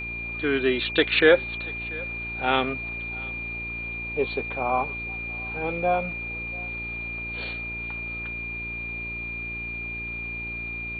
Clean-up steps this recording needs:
hum removal 57.8 Hz, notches 7
notch filter 2,400 Hz, Q 30
echo removal 688 ms −23 dB

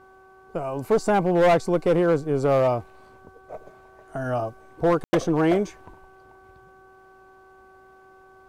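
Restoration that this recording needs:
clipped peaks rebuilt −14 dBFS
hum removal 380 Hz, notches 4
ambience match 0:05.04–0:05.13

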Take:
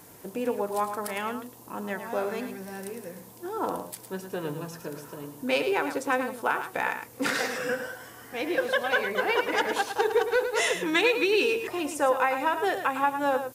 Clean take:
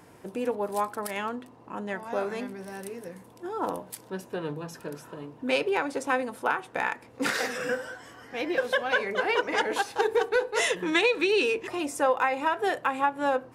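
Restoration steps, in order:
broadband denoise 6 dB, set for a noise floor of −46 dBFS
echo removal 108 ms −9 dB

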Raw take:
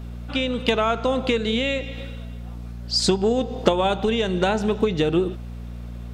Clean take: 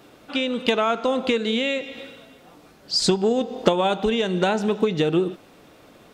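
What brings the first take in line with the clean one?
hum removal 59.1 Hz, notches 4

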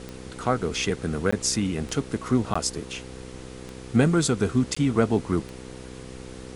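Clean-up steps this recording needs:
click removal
hum removal 63.7 Hz, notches 8
repair the gap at 0:01.31/0:02.54/0:04.75, 15 ms
noise reduction from a noise print 29 dB

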